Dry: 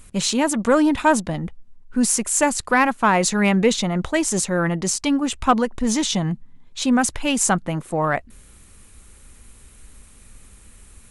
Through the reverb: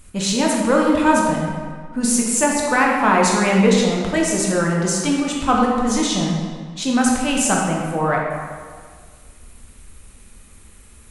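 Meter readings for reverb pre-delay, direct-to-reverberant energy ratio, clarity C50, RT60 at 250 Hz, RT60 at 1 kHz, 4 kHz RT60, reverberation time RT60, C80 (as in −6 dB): 13 ms, −2.0 dB, 1.0 dB, 1.8 s, 1.8 s, 1.2 s, 1.8 s, 2.5 dB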